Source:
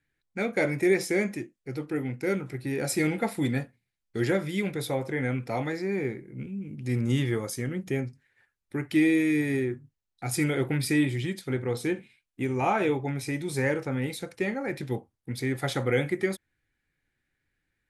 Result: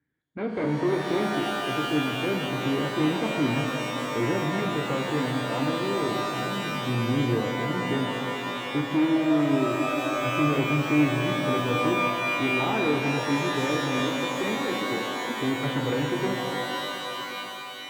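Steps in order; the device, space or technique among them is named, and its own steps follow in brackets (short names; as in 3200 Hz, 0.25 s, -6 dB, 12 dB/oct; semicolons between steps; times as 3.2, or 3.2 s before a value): 13.99–15.4 steep high-pass 180 Hz 72 dB/oct; guitar amplifier (tube stage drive 27 dB, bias 0.55; tone controls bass +5 dB, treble -12 dB; speaker cabinet 100–3800 Hz, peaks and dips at 290 Hz +7 dB, 440 Hz +4 dB, 980 Hz +4 dB, 2600 Hz -10 dB); shimmer reverb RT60 3.7 s, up +12 st, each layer -2 dB, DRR 3 dB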